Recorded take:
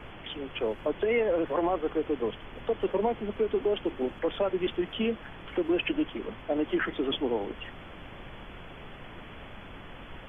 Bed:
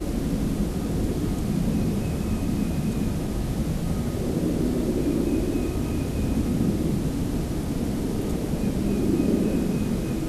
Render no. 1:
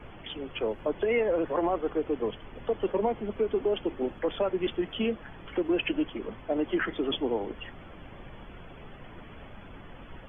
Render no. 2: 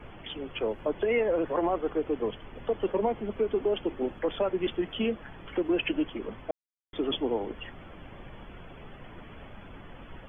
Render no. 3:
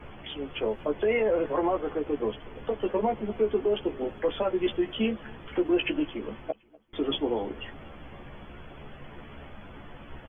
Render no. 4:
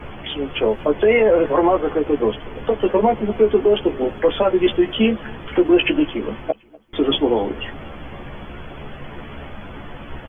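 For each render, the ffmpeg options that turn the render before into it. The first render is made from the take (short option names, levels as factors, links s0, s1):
-af "afftdn=nr=8:nf=-46"
-filter_complex "[0:a]asplit=3[s0][s1][s2];[s0]atrim=end=6.51,asetpts=PTS-STARTPTS,afade=t=out:st=6.506:d=0.004:c=hsin[s3];[s1]atrim=start=6.51:end=6.93,asetpts=PTS-STARTPTS,volume=0[s4];[s2]atrim=start=6.93,asetpts=PTS-STARTPTS,afade=t=in:d=0.004:c=hsin[s5];[s3][s4][s5]concat=n=3:v=0:a=1"
-filter_complex "[0:a]asplit=2[s0][s1];[s1]adelay=14,volume=0.562[s2];[s0][s2]amix=inputs=2:normalize=0,aecho=1:1:245|490|735:0.0631|0.0322|0.0164"
-af "volume=3.35"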